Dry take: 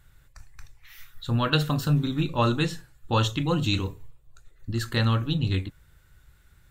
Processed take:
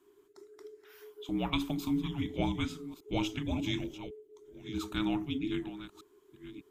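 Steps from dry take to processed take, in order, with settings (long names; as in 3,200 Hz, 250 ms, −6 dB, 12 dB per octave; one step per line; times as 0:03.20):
delay that plays each chunk backwards 601 ms, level −13 dB
0:01.72–0:02.38: flat-topped bell 800 Hz −12 dB 1 octave
frequency shifter −430 Hz
level −9 dB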